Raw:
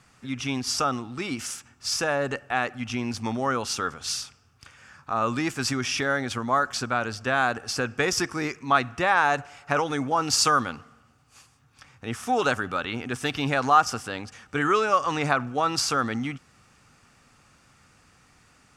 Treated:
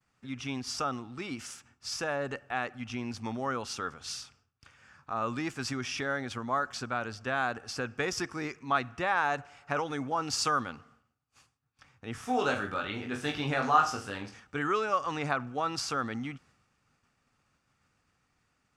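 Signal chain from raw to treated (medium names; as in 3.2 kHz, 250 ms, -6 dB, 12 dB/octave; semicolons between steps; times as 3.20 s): expander -51 dBFS; treble shelf 8.4 kHz -8.5 dB; 12.13–14.40 s: reverse bouncing-ball echo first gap 20 ms, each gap 1.2×, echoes 5; trim -7 dB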